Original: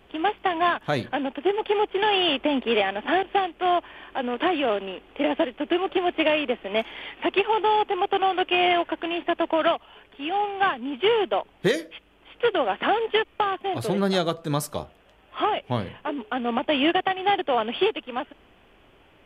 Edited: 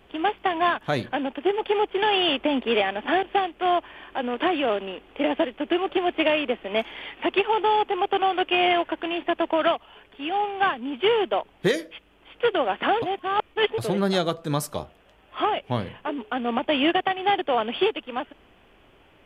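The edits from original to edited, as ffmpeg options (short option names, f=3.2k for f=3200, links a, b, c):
-filter_complex "[0:a]asplit=3[a][b][c];[a]atrim=end=13.022[d];[b]atrim=start=13.018:end=13.782,asetpts=PTS-STARTPTS,areverse[e];[c]atrim=start=13.778[f];[d][e]acrossfade=d=0.004:c1=hsin:c2=hsin[g];[g][f]acrossfade=d=0.004:c1=hsin:c2=hsin"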